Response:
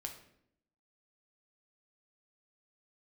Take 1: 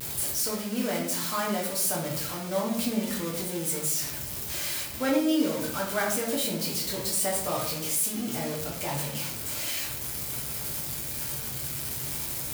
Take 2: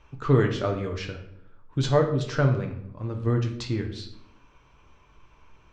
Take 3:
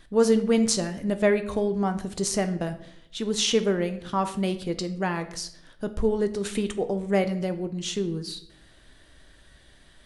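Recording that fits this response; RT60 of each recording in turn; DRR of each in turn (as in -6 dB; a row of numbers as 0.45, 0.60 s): 2; 0.70, 0.70, 0.70 s; -4.0, 3.0, 8.5 dB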